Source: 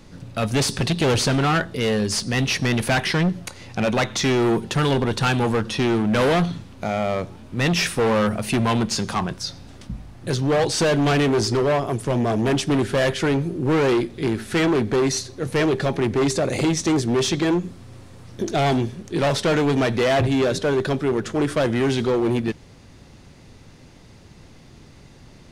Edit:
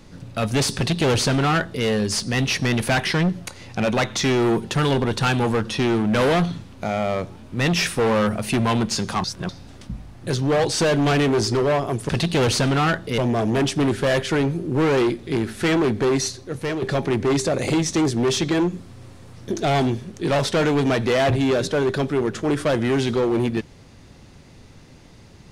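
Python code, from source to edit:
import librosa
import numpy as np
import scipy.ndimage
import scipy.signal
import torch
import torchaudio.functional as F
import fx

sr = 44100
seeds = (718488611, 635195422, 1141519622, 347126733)

y = fx.edit(x, sr, fx.duplicate(start_s=0.76, length_s=1.09, to_s=12.09),
    fx.reverse_span(start_s=9.24, length_s=0.25),
    fx.fade_out_to(start_s=15.16, length_s=0.57, floor_db=-8.0), tone=tone)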